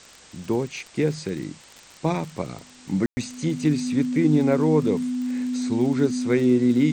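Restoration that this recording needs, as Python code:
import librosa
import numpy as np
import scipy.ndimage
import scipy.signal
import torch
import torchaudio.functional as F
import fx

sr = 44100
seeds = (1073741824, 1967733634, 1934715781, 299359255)

y = fx.fix_declick_ar(x, sr, threshold=6.5)
y = fx.notch(y, sr, hz=250.0, q=30.0)
y = fx.fix_ambience(y, sr, seeds[0], print_start_s=1.53, print_end_s=2.03, start_s=3.06, end_s=3.17)
y = fx.noise_reduce(y, sr, print_start_s=1.53, print_end_s=2.03, reduce_db=18.0)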